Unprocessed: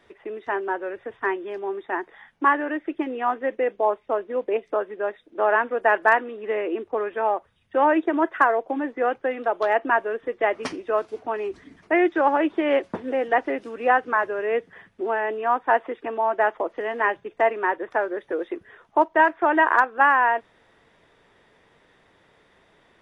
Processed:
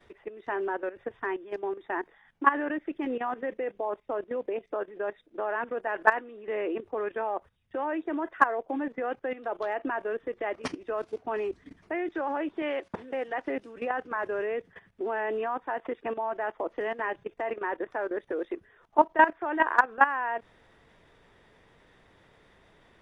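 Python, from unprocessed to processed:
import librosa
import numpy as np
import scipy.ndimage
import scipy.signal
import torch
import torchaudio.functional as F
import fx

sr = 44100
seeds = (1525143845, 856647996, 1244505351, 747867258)

y = fx.low_shelf(x, sr, hz=450.0, db=-8.0, at=(12.62, 13.48))
y = fx.low_shelf(y, sr, hz=120.0, db=9.5)
y = fx.level_steps(y, sr, step_db=15)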